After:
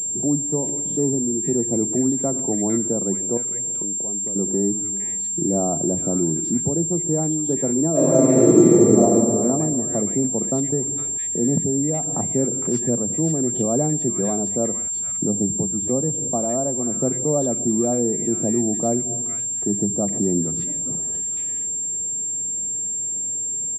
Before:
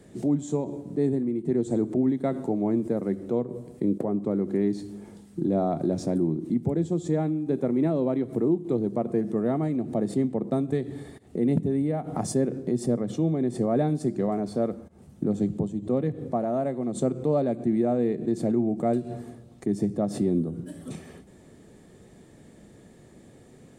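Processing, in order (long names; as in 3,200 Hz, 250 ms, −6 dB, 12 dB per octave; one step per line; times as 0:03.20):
0:03.37–0:04.36: downward compressor 4 to 1, threshold −37 dBFS, peak gain reduction 14.5 dB
multiband delay without the direct sound lows, highs 460 ms, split 1,400 Hz
0:07.91–0:09.07: thrown reverb, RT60 2.3 s, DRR −8.5 dB
switching amplifier with a slow clock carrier 7,400 Hz
level +2.5 dB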